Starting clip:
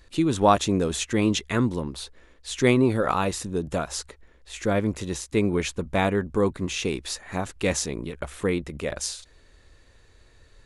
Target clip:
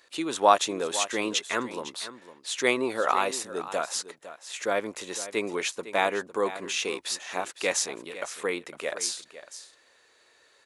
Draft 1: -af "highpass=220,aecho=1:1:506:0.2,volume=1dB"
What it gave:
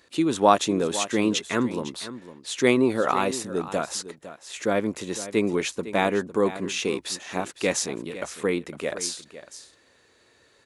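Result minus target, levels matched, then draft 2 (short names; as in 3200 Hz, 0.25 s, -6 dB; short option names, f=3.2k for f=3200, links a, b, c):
250 Hz band +7.0 dB
-af "highpass=540,aecho=1:1:506:0.2,volume=1dB"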